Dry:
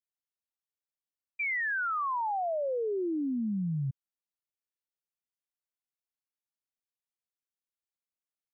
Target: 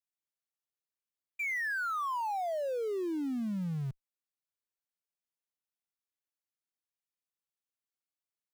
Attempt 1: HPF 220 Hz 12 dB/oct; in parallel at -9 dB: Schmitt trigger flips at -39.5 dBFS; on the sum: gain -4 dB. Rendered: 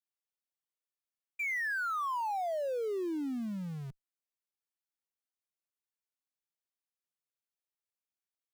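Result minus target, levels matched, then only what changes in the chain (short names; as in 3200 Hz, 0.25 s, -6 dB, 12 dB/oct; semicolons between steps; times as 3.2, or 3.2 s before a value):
125 Hz band -5.0 dB
change: HPF 100 Hz 12 dB/oct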